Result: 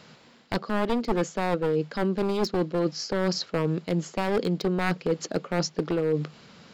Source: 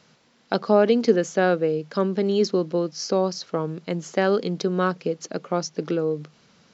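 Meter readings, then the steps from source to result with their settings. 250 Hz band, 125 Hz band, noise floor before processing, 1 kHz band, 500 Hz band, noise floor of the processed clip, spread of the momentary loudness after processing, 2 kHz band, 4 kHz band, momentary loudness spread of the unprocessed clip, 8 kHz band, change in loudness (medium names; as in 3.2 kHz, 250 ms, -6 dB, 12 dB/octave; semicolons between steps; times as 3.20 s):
-2.5 dB, +0.5 dB, -60 dBFS, -3.0 dB, -5.5 dB, -55 dBFS, 3 LU, -2.5 dB, -0.5 dB, 10 LU, no reading, -4.0 dB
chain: one-sided wavefolder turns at -20.5 dBFS; peaking EQ 6 kHz -8 dB 0.27 oct; reverse; compression 6:1, threshold -29 dBFS, peak gain reduction 15.5 dB; reverse; trim +7 dB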